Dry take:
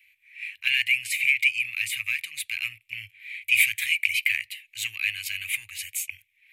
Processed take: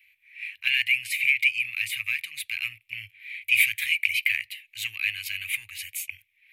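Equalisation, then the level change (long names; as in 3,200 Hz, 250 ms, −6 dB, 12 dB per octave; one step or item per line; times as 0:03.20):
parametric band 7,500 Hz −6.5 dB 0.72 octaves
0.0 dB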